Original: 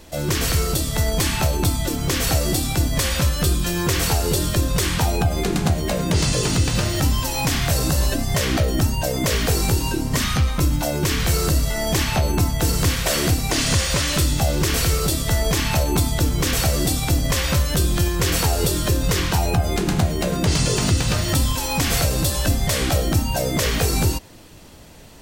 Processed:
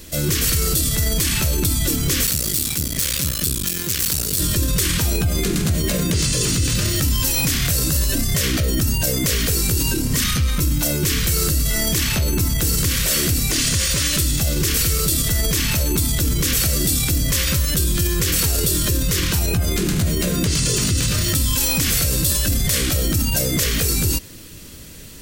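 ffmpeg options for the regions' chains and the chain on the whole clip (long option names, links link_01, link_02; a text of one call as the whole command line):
ffmpeg -i in.wav -filter_complex "[0:a]asettb=1/sr,asplit=3[link_01][link_02][link_03];[link_01]atrim=end=2.264[link_04];[link_02]atrim=start=2.26:end=4.4,asetpts=PTS-STARTPTS,afade=type=in:duration=0.004:curve=qsin,afade=type=out:start_time=2.136:duration=0.004:curve=qsin,acrossover=split=160|3000[link_05][link_06][link_07];[link_06]acompressor=threshold=-29dB:ratio=3:attack=3.2:release=140:knee=2.83:detection=peak[link_08];[link_05][link_08][link_07]amix=inputs=3:normalize=0,aeval=exprs='max(val(0),0)':channel_layout=same,highpass=frequency=110:poles=1[link_09];[link_03]atrim=start=4.396[link_10];[link_04][link_09]acrossfade=duration=0.004:curve1=hsin:curve2=qsin[link_11];[link_11][link_10]acrossfade=duration=0.004:curve1=qsin:curve2=hsin,equalizer=frequency=790:width_type=o:width=0.81:gain=-15,alimiter=limit=-17.5dB:level=0:latency=1:release=16,highshelf=frequency=7800:gain=9.5,volume=5dB" out.wav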